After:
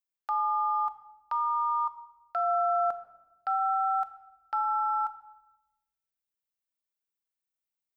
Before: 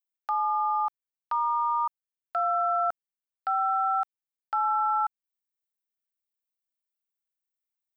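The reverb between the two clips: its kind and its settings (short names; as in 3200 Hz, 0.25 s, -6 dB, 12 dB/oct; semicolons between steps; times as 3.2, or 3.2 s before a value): shoebox room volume 490 m³, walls mixed, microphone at 0.42 m; gain -2.5 dB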